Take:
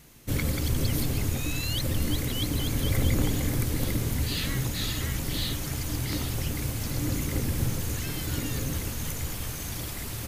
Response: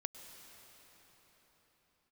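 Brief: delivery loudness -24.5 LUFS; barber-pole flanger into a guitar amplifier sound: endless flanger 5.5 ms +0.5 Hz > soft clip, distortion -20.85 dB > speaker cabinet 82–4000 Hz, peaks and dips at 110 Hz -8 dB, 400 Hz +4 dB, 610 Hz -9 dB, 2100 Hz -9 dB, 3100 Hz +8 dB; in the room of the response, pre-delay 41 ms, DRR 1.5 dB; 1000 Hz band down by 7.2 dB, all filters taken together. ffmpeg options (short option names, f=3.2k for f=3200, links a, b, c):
-filter_complex "[0:a]equalizer=f=1k:t=o:g=-8,asplit=2[a][b];[1:a]atrim=start_sample=2205,adelay=41[c];[b][c]afir=irnorm=-1:irlink=0,volume=0.5dB[d];[a][d]amix=inputs=2:normalize=0,asplit=2[e][f];[f]adelay=5.5,afreqshift=0.5[g];[e][g]amix=inputs=2:normalize=1,asoftclip=threshold=-18dB,highpass=82,equalizer=f=110:t=q:w=4:g=-8,equalizer=f=400:t=q:w=4:g=4,equalizer=f=610:t=q:w=4:g=-9,equalizer=f=2.1k:t=q:w=4:g=-9,equalizer=f=3.1k:t=q:w=4:g=8,lowpass=f=4k:w=0.5412,lowpass=f=4k:w=1.3066,volume=9dB"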